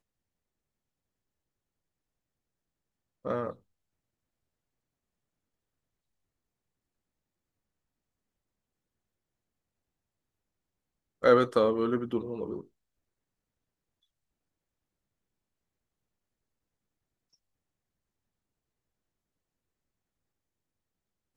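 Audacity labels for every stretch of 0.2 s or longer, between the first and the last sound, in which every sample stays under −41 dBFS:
3.520000	11.230000	silence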